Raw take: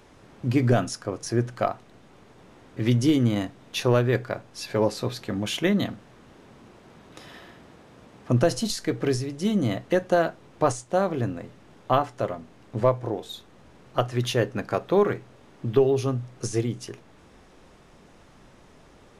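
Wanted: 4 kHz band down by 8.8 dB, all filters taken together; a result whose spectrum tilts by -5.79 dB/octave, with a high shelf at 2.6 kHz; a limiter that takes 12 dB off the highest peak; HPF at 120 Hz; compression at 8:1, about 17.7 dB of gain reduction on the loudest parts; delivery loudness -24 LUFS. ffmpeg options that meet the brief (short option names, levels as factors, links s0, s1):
-af "highpass=120,highshelf=f=2600:g=-4.5,equalizer=f=4000:t=o:g=-8,acompressor=threshold=0.02:ratio=8,volume=8.41,alimiter=limit=0.282:level=0:latency=1"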